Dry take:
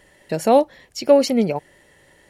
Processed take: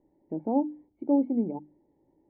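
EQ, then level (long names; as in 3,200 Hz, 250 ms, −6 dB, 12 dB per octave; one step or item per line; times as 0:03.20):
formant resonators in series u
mains-hum notches 50/100/150/200/250/300 Hz
0.0 dB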